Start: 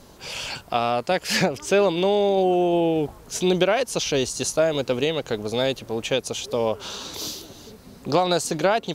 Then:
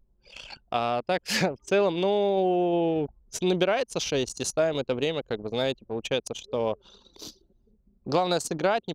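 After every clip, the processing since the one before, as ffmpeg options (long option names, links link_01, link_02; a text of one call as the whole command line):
ffmpeg -i in.wav -af "anlmdn=100,volume=-4dB" out.wav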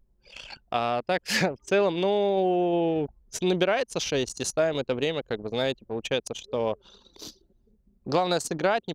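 ffmpeg -i in.wav -af "equalizer=frequency=1800:width=2.8:gain=3.5" out.wav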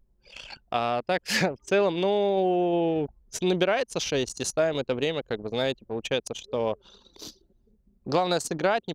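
ffmpeg -i in.wav -af anull out.wav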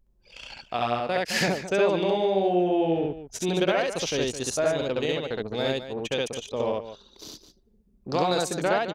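ffmpeg -i in.wav -af "aecho=1:1:67.06|212.8:1|0.282,volume=-2.5dB" out.wav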